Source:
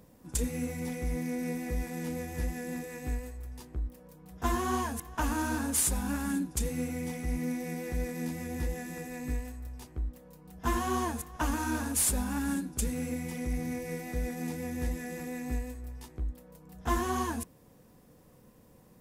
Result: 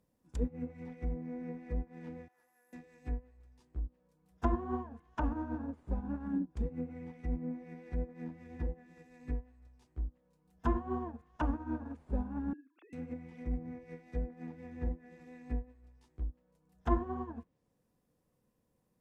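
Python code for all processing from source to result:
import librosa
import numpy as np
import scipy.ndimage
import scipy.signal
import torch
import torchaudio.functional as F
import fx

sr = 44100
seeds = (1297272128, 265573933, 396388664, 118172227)

y = fx.chain(x, sr, fx.highpass(hz=1100.0, slope=12),
    fx.band_shelf(hz=4100.0, db=-15.0, octaves=2.4), at=(2.28, 2.73))
y = fx.chain(y, sr, fx.sine_speech(),
    fx.highpass(hz=370.0, slope=24),
    fx.peak_eq(hz=710.0, db=-5.0, octaves=1.9), at=(12.53, 12.93))
y = fx.env_lowpass_down(y, sr, base_hz=800.0, full_db=-28.5)
y = fx.upward_expand(y, sr, threshold_db=-41.0, expansion=2.5)
y = y * librosa.db_to_amplitude(3.0)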